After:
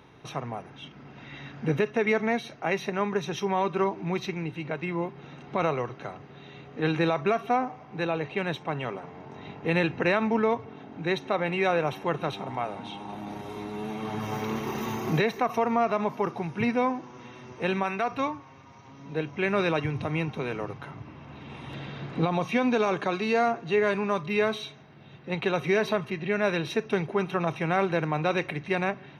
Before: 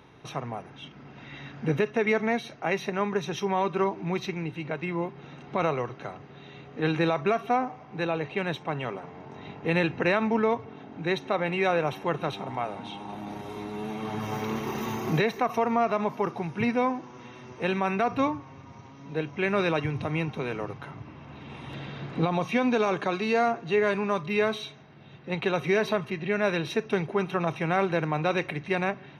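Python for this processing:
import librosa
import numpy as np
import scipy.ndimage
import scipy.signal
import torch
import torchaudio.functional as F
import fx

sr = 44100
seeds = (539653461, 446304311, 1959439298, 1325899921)

y = fx.low_shelf(x, sr, hz=470.0, db=-7.5, at=(17.83, 18.87))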